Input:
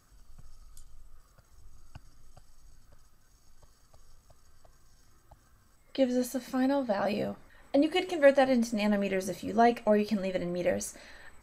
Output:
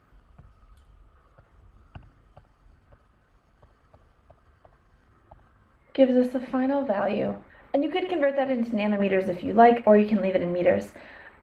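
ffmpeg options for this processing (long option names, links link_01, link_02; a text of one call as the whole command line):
ffmpeg -i in.wav -filter_complex "[0:a]highpass=frequency=44:width=0.5412,highpass=frequency=44:width=1.3066,bandreject=frequency=60:width_type=h:width=6,bandreject=frequency=120:width_type=h:width=6,bandreject=frequency=180:width_type=h:width=6,bandreject=frequency=240:width_type=h:width=6,bandreject=frequency=300:width_type=h:width=6,bandreject=frequency=360:width_type=h:width=6,aecho=1:1:76:0.2,asettb=1/sr,asplit=3[link_01][link_02][link_03];[link_01]atrim=end=6.254[link_04];[link_02]atrim=start=6.25:end=9,asetpts=PTS-STARTPTS,afade=type=in:duration=0.004:curve=qsin,afade=type=out:start_time=2.746:duration=0.004:curve=qsin,acompressor=threshold=-29dB:ratio=6[link_05];[link_03]atrim=start=8.996[link_06];[link_04][link_05]acrossfade=duration=0.004:curve1=hsin:curve2=qsin[link_07];[link_07][link_06]acrossfade=duration=0.004:curve1=qsin:curve2=hsin,firequalizer=gain_entry='entry(130,0);entry(420,2);entry(2800,-1);entry(5700,-23);entry(13000,-19)':delay=0.05:min_phase=1,volume=6.5dB" -ar 48000 -c:a libopus -b:a 20k out.opus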